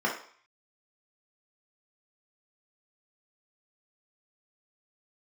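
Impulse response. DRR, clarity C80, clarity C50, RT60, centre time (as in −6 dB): −4.0 dB, 11.5 dB, 6.5 dB, 0.50 s, 26 ms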